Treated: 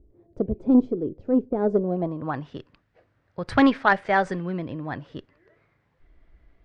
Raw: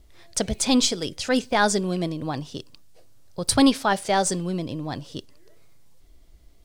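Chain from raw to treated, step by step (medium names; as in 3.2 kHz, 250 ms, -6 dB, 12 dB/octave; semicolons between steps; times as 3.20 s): low-pass sweep 380 Hz -> 1.8 kHz, 1.58–2.43 s; Chebyshev shaper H 3 -19 dB, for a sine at -5 dBFS; trim +1.5 dB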